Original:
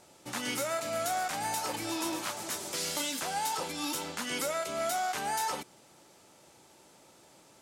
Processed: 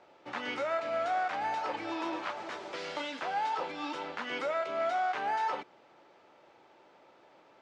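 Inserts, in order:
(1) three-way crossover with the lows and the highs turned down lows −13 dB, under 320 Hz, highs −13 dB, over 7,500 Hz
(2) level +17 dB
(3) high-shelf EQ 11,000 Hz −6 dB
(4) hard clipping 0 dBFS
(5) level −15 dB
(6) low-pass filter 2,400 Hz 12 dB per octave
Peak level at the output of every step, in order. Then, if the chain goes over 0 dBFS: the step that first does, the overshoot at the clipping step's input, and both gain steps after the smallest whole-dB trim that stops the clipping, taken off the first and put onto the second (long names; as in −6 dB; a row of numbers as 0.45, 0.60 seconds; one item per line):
−21.5, −4.5, −5.0, −5.0, −20.0, −21.5 dBFS
no step passes full scale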